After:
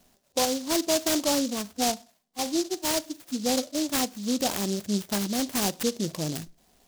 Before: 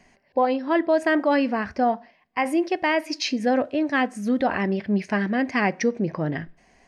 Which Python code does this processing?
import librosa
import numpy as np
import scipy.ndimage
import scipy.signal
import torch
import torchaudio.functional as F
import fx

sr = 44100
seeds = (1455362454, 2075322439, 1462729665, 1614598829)

y = fx.hpss_only(x, sr, part='harmonic', at=(1.32, 3.74), fade=0.02)
y = fx.noise_mod_delay(y, sr, seeds[0], noise_hz=5000.0, depth_ms=0.17)
y = F.gain(torch.from_numpy(y), -4.5).numpy()